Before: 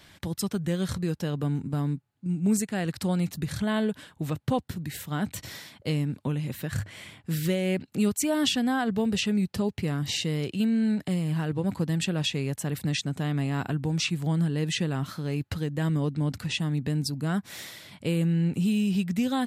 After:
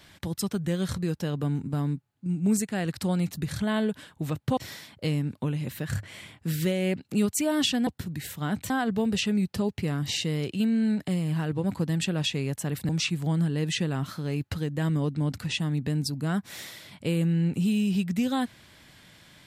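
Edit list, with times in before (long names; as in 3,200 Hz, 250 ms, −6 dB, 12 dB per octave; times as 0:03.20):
0:04.57–0:05.40: move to 0:08.70
0:12.89–0:13.89: remove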